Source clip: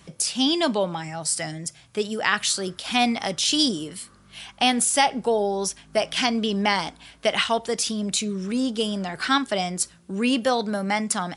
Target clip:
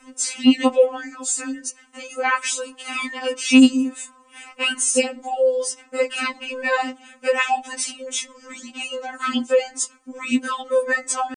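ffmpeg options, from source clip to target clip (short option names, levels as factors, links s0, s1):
-af "equalizer=f=4800:w=1.6:g=-13.5,asetrate=38170,aresample=44100,atempo=1.15535,afftfilt=real='re*3.46*eq(mod(b,12),0)':imag='im*3.46*eq(mod(b,12),0)':win_size=2048:overlap=0.75,volume=2.24"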